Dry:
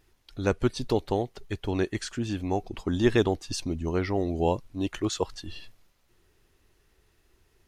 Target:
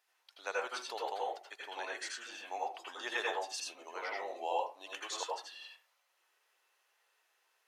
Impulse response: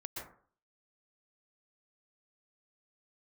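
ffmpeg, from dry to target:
-filter_complex "[0:a]highpass=frequency=650:width=0.5412,highpass=frequency=650:width=1.3066[link_01];[1:a]atrim=start_sample=2205,asetrate=66150,aresample=44100[link_02];[link_01][link_02]afir=irnorm=-1:irlink=0,volume=1.5dB"

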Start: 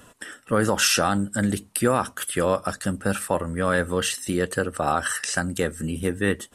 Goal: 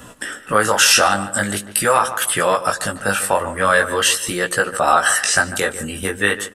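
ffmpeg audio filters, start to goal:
ffmpeg -i in.wav -filter_complex "[0:a]acrossover=split=580|4900[link_01][link_02][link_03];[link_01]acompressor=threshold=-38dB:ratio=6[link_04];[link_04][link_02][link_03]amix=inputs=3:normalize=0,flanger=delay=16.5:depth=4.5:speed=0.43,asplit=2[link_05][link_06];[link_06]adelay=147,lowpass=frequency=2200:poles=1,volume=-13dB,asplit=2[link_07][link_08];[link_08]adelay=147,lowpass=frequency=2200:poles=1,volume=0.38,asplit=2[link_09][link_10];[link_10]adelay=147,lowpass=frequency=2200:poles=1,volume=0.38,asplit=2[link_11][link_12];[link_12]adelay=147,lowpass=frequency=2200:poles=1,volume=0.38[link_13];[link_05][link_07][link_09][link_11][link_13]amix=inputs=5:normalize=0,alimiter=level_in=14.5dB:limit=-1dB:release=50:level=0:latency=1,volume=-1dB" out.wav

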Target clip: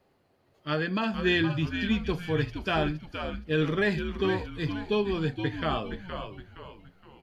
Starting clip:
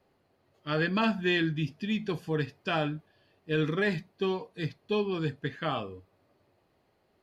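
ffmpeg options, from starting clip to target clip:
ffmpeg -i in.wav -filter_complex "[0:a]asettb=1/sr,asplit=3[link_01][link_02][link_03];[link_01]atrim=end=0.744[link_04];[link_02]atrim=start=0.74:end=1.14,asetpts=PTS-STARTPTS,afade=type=in:duration=0.004:curve=qsin,afade=type=out:start_time=0.396:duration=0.004:curve=qsin,acompressor=threshold=-27dB:ratio=6[link_05];[link_03]atrim=start=1.136[link_06];[link_04][link_05]acrossfade=duration=0.004:curve1=hsin:curve2=qsin[link_07];[link_07][link_06]acrossfade=duration=0.004:curve1=qsin:curve2=hsin,asplit=5[link_08][link_09][link_10][link_11][link_12];[link_09]adelay=468,afreqshift=-95,volume=-7.5dB[link_13];[link_10]adelay=936,afreqshift=-190,volume=-15.9dB[link_14];[link_11]adelay=1404,afreqshift=-285,volume=-24.3dB[link_15];[link_12]adelay=1872,afreqshift=-380,volume=-32.7dB[link_16];[link_08][link_13][link_14][link_15][link_16]amix=inputs=5:normalize=0,volume=2dB" out.wav

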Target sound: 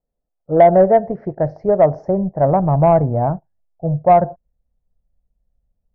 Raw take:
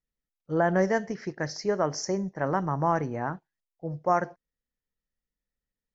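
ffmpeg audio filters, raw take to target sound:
ffmpeg -i in.wav -af "lowpass=frequency=660:width_type=q:width=4.2,asubboost=boost=8:cutoff=130,acontrast=57,volume=1.5dB" out.wav

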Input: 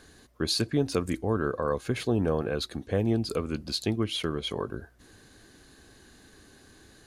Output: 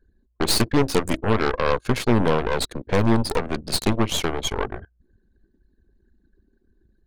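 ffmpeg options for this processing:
ffmpeg -i in.wav -af "anlmdn=0.0631,aeval=exprs='0.224*(cos(1*acos(clip(val(0)/0.224,-1,1)))-cos(1*PI/2))+0.0501*(cos(8*acos(clip(val(0)/0.224,-1,1)))-cos(8*PI/2))':channel_layout=same,volume=5dB" out.wav

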